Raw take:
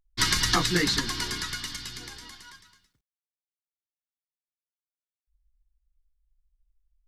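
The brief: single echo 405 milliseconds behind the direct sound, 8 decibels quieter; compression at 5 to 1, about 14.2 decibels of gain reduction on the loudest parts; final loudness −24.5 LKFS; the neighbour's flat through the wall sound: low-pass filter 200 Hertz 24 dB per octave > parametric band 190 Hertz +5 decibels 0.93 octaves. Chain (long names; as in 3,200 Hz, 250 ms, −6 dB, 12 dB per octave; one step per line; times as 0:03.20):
downward compressor 5 to 1, threshold −36 dBFS
low-pass filter 200 Hz 24 dB per octave
parametric band 190 Hz +5 dB 0.93 octaves
single-tap delay 405 ms −8 dB
level +23 dB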